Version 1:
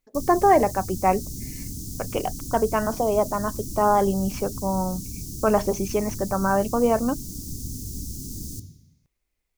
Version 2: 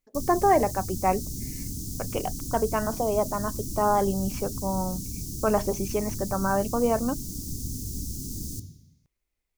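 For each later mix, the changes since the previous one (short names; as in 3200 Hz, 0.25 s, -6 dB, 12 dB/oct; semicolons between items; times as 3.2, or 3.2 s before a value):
speech -3.5 dB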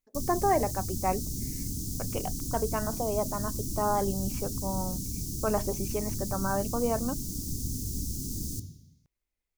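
speech -5.0 dB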